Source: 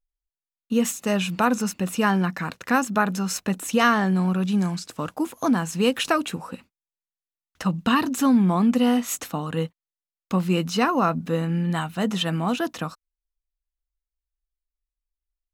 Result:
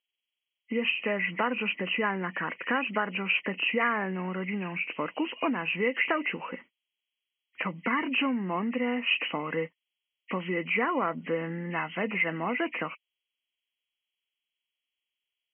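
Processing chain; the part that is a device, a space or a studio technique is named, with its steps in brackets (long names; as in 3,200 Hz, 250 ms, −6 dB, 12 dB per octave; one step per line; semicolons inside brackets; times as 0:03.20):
hearing aid with frequency lowering (hearing-aid frequency compression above 1,800 Hz 4 to 1; downward compressor 3 to 1, threshold −25 dBFS, peak gain reduction 8.5 dB; loudspeaker in its box 340–5,800 Hz, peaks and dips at 750 Hz −6 dB, 1,300 Hz −4 dB, 3,700 Hz −3 dB)
level +2.5 dB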